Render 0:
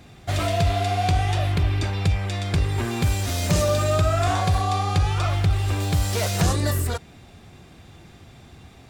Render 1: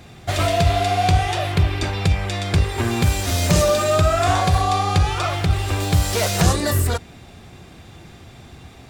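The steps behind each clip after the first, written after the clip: hum notches 50/100/150/200/250/300 Hz; trim +5 dB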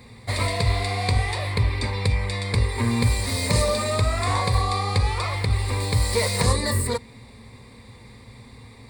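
rippled EQ curve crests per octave 0.95, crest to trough 14 dB; trim -5 dB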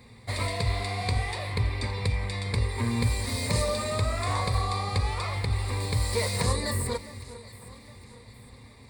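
echo whose repeats swap between lows and highs 406 ms, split 1.9 kHz, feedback 63%, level -13.5 dB; trim -5.5 dB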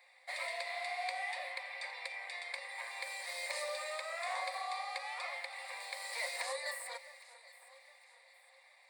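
rippled Chebyshev high-pass 520 Hz, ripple 9 dB; trim -3 dB

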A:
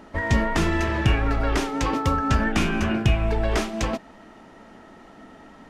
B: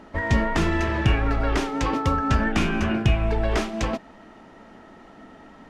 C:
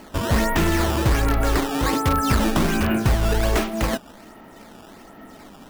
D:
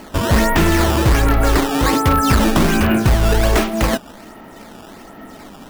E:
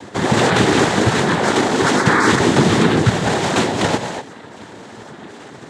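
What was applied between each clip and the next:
treble shelf 8 kHz -8 dB
in parallel at -7.5 dB: integer overflow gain 14.5 dB; on the sum: decimation with a swept rate 12×, swing 160% 1.3 Hz
overload inside the chain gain 14 dB; trim +6 dB
gated-style reverb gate 260 ms rising, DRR 7.5 dB; noise-vocoded speech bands 6; trim +1.5 dB

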